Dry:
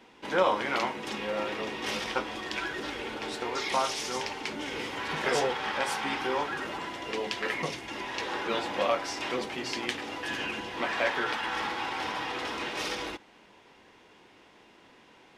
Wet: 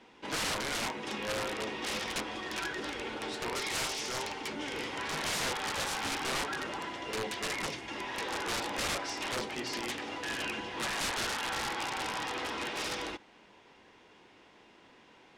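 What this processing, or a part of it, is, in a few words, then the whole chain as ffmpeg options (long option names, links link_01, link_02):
overflowing digital effects unit: -af "aeval=exprs='(mod(17.8*val(0)+1,2)-1)/17.8':channel_layout=same,lowpass=9500,volume=-2dB"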